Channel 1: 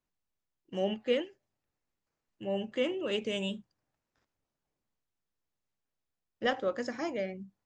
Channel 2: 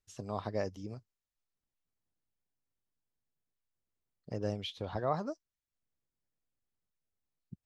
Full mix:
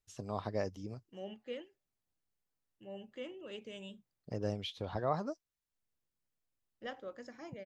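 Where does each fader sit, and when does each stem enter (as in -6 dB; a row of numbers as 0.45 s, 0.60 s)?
-14.0 dB, -1.0 dB; 0.40 s, 0.00 s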